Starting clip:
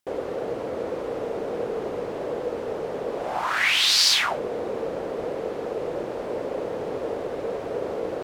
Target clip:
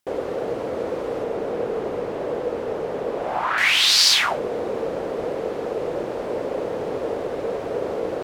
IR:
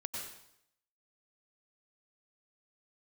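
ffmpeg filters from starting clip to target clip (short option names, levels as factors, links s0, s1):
-filter_complex "[0:a]asettb=1/sr,asplit=3[s0][s1][s2];[s0]atrim=end=1.234[s3];[s1]atrim=start=1.23:end=3.58,asetpts=PTS-STARTPTS,afade=t=in:d=0.004:c=qsin,afade=t=out:st=2.346:d=0.004:c=qsin,acrossover=split=3300[s4][s5];[s5]acompressor=threshold=0.00158:ratio=4:attack=1:release=60[s6];[s4][s6]amix=inputs=2:normalize=0[s7];[s2]atrim=start=3.576[s8];[s3][s7]acrossfade=d=0.004:c1=hsin:c2=qsin[s9];[s9][s8]acrossfade=d=0.004:c1=qsin:c2=hsin,volume=1.41"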